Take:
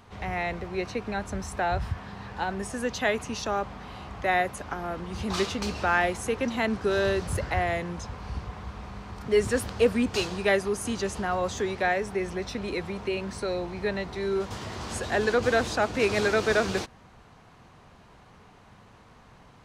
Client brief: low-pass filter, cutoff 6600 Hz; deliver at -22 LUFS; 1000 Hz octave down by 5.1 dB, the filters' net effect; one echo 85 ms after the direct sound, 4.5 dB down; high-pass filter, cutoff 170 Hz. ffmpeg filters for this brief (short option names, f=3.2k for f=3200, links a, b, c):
-af "highpass=170,lowpass=6.6k,equalizer=f=1k:t=o:g=-8,aecho=1:1:85:0.596,volume=7dB"